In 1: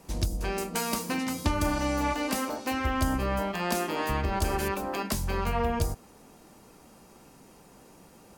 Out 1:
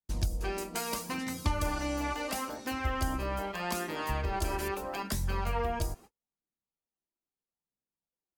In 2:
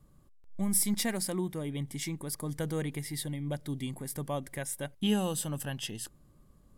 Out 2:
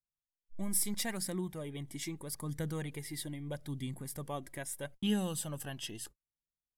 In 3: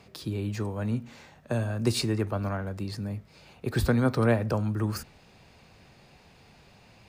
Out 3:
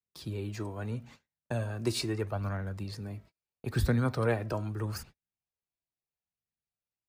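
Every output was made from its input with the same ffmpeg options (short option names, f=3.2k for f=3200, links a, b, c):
-af "agate=range=-43dB:threshold=-45dB:ratio=16:detection=peak,adynamicequalizer=threshold=0.0112:dfrequency=240:dqfactor=1.7:tfrequency=240:tqfactor=1.7:attack=5:release=100:ratio=0.375:range=2:mode=cutabove:tftype=bell,flanger=delay=0.5:depth=2.6:regen=45:speed=0.77:shape=sinusoidal"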